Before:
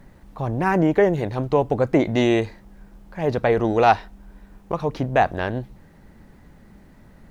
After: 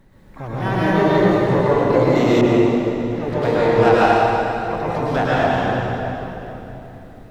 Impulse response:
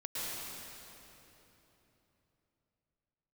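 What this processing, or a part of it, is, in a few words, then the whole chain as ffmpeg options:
shimmer-style reverb: -filter_complex "[0:a]asplit=2[a][b];[b]asetrate=88200,aresample=44100,atempo=0.5,volume=-10dB[c];[a][c]amix=inputs=2:normalize=0[d];[1:a]atrim=start_sample=2205[e];[d][e]afir=irnorm=-1:irlink=0,asettb=1/sr,asplit=3[f][g][h];[f]atrim=end=2.414[i];[g]atrim=start=2.41:end=3.42,asetpts=PTS-STARTPTS,afade=t=in:d=0.004:c=qsin,afade=t=out:st=1.006:d=0.004:c=qsin,adynamicequalizer=threshold=0.0158:dfrequency=2200:dqfactor=0.7:tfrequency=2200:tqfactor=0.7:attack=5:release=100:ratio=0.375:range=3:mode=cutabove:tftype=highshelf[j];[h]atrim=start=3.416[k];[i][j]acrossfade=d=0.004:c1=hsin:c2=qsin[l];[l][k]acrossfade=d=0.004:c1=qsin:c2=hsin"

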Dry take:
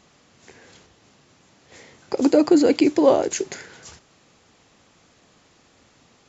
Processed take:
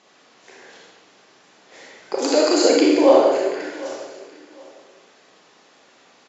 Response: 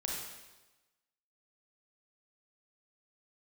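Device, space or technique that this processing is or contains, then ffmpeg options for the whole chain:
supermarket ceiling speaker: -filter_complex "[0:a]asettb=1/sr,asplit=3[a][b][c];[a]atrim=end=2.184[d];[b]atrim=start=2.18:end=2.65,asetpts=PTS-STARTPTS,afade=t=in:d=0.004:c=qsin,afade=t=out:st=0.466:d=0.004:c=qsin,aemphasis=mode=production:type=riaa[e];[c]atrim=start=2.646[f];[d][e]acrossfade=d=0.004:c1=hsin:c2=qsin[g];[g][f]acrossfade=d=0.004:c1=qsin:c2=hsin,asettb=1/sr,asplit=3[h][i][j];[h]atrim=end=3.184[k];[i]atrim=start=3.18:end=3.6,asetpts=PTS-STARTPTS,afade=t=in:d=0.004:c=qsin,afade=t=out:st=0.416:d=0.004:c=qsin,lowpass=1.9k[l];[j]atrim=start=3.596[m];[k][l]acrossfade=d=0.004:c1=hsin:c2=qsin[n];[n][m]acrossfade=d=0.004:c1=qsin:c2=hsin,highpass=340,lowpass=5.8k[o];[1:a]atrim=start_sample=2205[p];[o][p]afir=irnorm=-1:irlink=0,aecho=1:1:754|1508:0.112|0.0269,volume=3dB"

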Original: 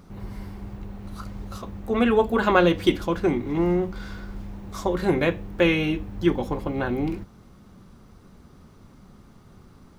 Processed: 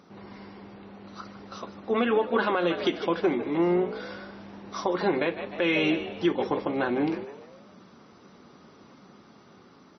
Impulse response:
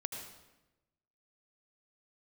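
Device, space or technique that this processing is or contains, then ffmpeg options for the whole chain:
low-bitrate web radio: -filter_complex "[0:a]highpass=260,asplit=3[a][b][c];[a]afade=t=out:st=4.51:d=0.02[d];[b]adynamicequalizer=threshold=0.00891:dfrequency=1000:dqfactor=1.5:tfrequency=1000:tqfactor=1.5:attack=5:release=100:ratio=0.375:range=1.5:mode=boostabove:tftype=bell,afade=t=in:st=4.51:d=0.02,afade=t=out:st=5.14:d=0.02[e];[c]afade=t=in:st=5.14:d=0.02[f];[d][e][f]amix=inputs=3:normalize=0,asplit=5[g][h][i][j][k];[h]adelay=151,afreqshift=70,volume=-14dB[l];[i]adelay=302,afreqshift=140,volume=-21.1dB[m];[j]adelay=453,afreqshift=210,volume=-28.3dB[n];[k]adelay=604,afreqshift=280,volume=-35.4dB[o];[g][l][m][n][o]amix=inputs=5:normalize=0,dynaudnorm=f=730:g=5:m=4dB,alimiter=limit=-13.5dB:level=0:latency=1:release=194" -ar 24000 -c:a libmp3lame -b:a 24k

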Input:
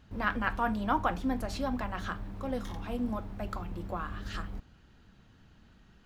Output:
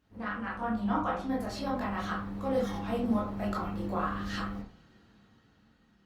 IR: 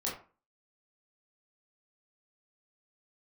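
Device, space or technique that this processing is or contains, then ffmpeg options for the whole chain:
far-field microphone of a smart speaker: -filter_complex "[0:a]asettb=1/sr,asplit=3[a][b][c];[a]atrim=end=0.574[d];[b]atrim=start=0.57:end=1.04,asetpts=PTS-STARTPTS,afade=t=in:d=0.004:c=qsin,afade=t=out:st=0.466:d=0.004:c=qsin,lowshelf=f=260:g=6[e];[c]atrim=start=1.036[f];[d][e]acrossfade=d=0.004:c1=hsin:c2=qsin[g];[g][f]acrossfade=d=0.004:c1=qsin:c2=hsin[h];[1:a]atrim=start_sample=2205[i];[h][i]afir=irnorm=-1:irlink=0,highpass=f=110:p=1,dynaudnorm=f=260:g=11:m=10dB,volume=-8.5dB" -ar 48000 -c:a libopus -b:a 32k

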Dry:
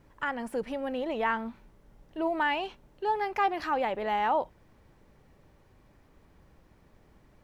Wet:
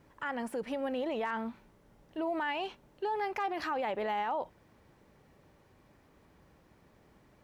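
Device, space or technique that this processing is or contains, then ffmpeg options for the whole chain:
clipper into limiter: -af "asoftclip=type=hard:threshold=-18dB,alimiter=level_in=2dB:limit=-24dB:level=0:latency=1:release=46,volume=-2dB,highpass=f=110:p=1"

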